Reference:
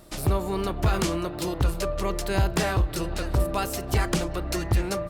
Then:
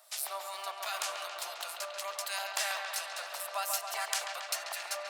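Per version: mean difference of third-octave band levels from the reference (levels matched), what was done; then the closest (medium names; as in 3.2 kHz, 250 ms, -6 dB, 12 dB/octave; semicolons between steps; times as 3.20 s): 17.5 dB: elliptic high-pass 650 Hz, stop band 70 dB; treble shelf 2.5 kHz +10.5 dB; harmonic tremolo 2.8 Hz, depth 50%, crossover 1.6 kHz; on a send: feedback echo behind a low-pass 138 ms, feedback 73%, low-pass 3.9 kHz, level -5 dB; on the sum: trim -7 dB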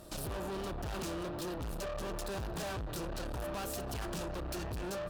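4.5 dB: peaking EQ 590 Hz +2.5 dB; in parallel at -10.5 dB: bit crusher 5-bit; on the sum: valve stage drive 37 dB, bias 0.45; peaking EQ 2.1 kHz -8 dB 0.21 oct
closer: second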